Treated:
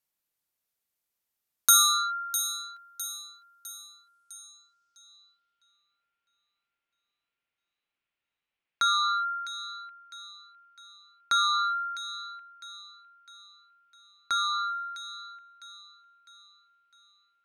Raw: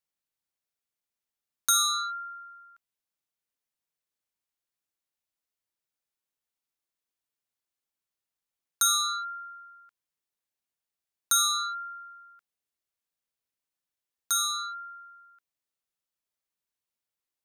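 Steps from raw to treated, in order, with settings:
delay with a high-pass on its return 655 ms, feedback 46%, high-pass 2,300 Hz, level −10 dB
low-pass filter sweep 14,000 Hz → 2,600 Hz, 0:03.82–0:05.81
level +3 dB

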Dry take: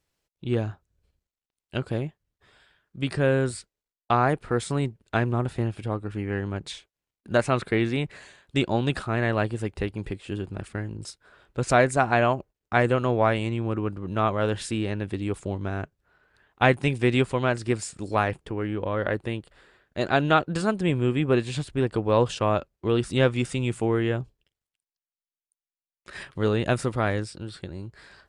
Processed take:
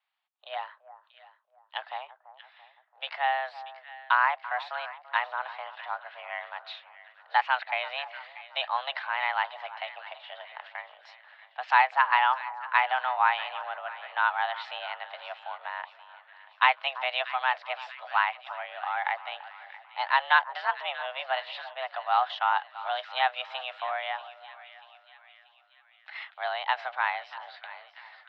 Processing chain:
echo with a time of its own for lows and highs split 1,200 Hz, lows 337 ms, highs 636 ms, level −15 dB
single-sideband voice off tune +260 Hz 530–3,600 Hz

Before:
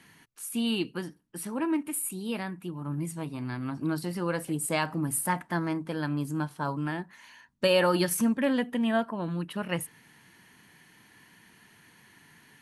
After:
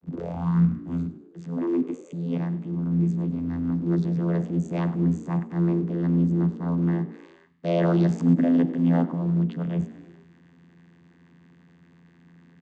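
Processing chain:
turntable start at the beginning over 1.36 s
low-shelf EQ 300 Hz +11.5 dB
transient designer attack −9 dB, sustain +4 dB
in parallel at −11.5 dB: log-companded quantiser 4 bits
on the sum: channel vocoder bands 16, saw 85.4 Hz
on a send: echo with shifted repeats 102 ms, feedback 52%, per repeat +57 Hz, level −18 dB

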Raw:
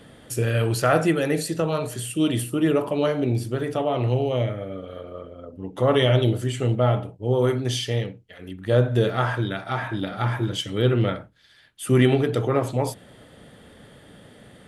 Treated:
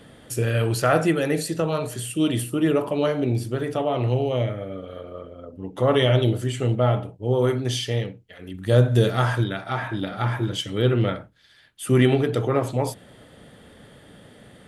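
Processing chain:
0:08.54–0:09.44: bass and treble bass +4 dB, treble +9 dB

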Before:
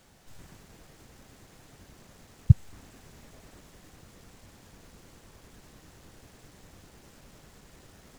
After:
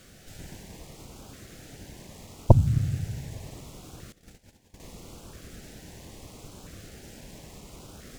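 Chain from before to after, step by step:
four-comb reverb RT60 2.1 s, combs from 29 ms, DRR 8 dB
harmonic generator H 5 −8 dB, 8 −11 dB, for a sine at −2.5 dBFS
auto-filter notch saw up 0.75 Hz 850–2,000 Hz
0:04.12–0:04.80: noise gate −41 dBFS, range −18 dB
level −1.5 dB

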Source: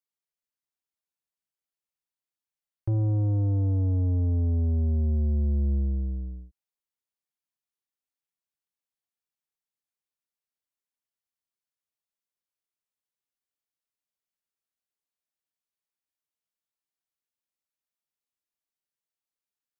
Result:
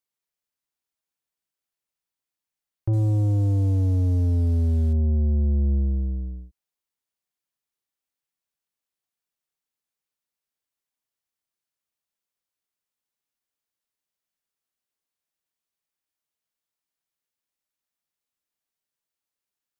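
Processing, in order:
0:02.93–0:04.93: variable-slope delta modulation 64 kbit/s
level +3.5 dB

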